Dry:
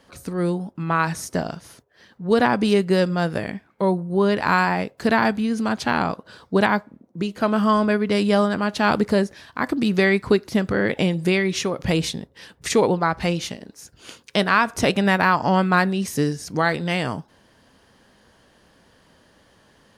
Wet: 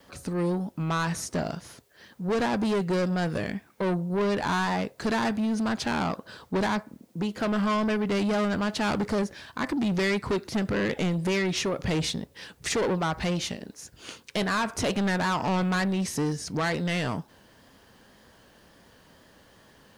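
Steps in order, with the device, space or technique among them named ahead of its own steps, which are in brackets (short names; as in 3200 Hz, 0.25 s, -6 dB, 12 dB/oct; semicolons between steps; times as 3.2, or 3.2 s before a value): compact cassette (soft clip -22.5 dBFS, distortion -7 dB; LPF 10000 Hz 12 dB/oct; wow and flutter 47 cents; white noise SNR 41 dB)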